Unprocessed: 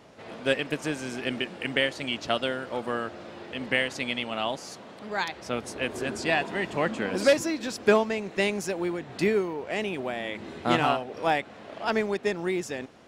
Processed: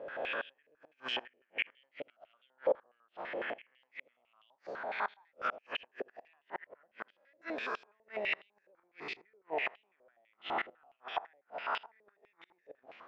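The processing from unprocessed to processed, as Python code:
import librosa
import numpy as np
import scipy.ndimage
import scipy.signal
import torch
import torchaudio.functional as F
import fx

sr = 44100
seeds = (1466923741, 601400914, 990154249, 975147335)

y = fx.spec_swells(x, sr, rise_s=0.93)
y = fx.rider(y, sr, range_db=4, speed_s=0.5)
y = fx.gate_flip(y, sr, shuts_db=-17.0, range_db=-41)
y = fx.air_absorb(y, sr, metres=160.0)
y = y + 10.0 ** (-19.5 / 20.0) * np.pad(y, (int(81 * sr / 1000.0), 0))[:len(y)]
y = fx.filter_held_bandpass(y, sr, hz=12.0, low_hz=540.0, high_hz=3100.0)
y = y * librosa.db_to_amplitude(6.5)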